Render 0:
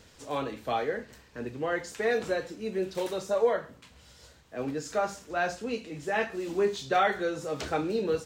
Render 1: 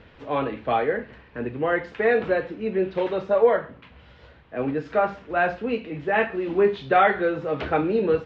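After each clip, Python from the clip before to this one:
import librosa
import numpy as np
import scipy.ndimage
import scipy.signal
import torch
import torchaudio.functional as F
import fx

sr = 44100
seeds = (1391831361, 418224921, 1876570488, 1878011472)

y = scipy.signal.sosfilt(scipy.signal.butter(4, 2900.0, 'lowpass', fs=sr, output='sos'), x)
y = F.gain(torch.from_numpy(y), 7.0).numpy()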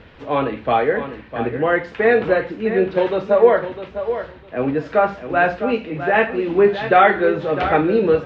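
y = fx.echo_feedback(x, sr, ms=654, feedback_pct=18, wet_db=-10.5)
y = F.gain(torch.from_numpy(y), 5.5).numpy()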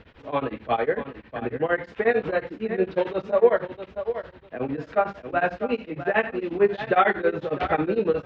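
y = x * np.abs(np.cos(np.pi * 11.0 * np.arange(len(x)) / sr))
y = F.gain(torch.from_numpy(y), -4.0).numpy()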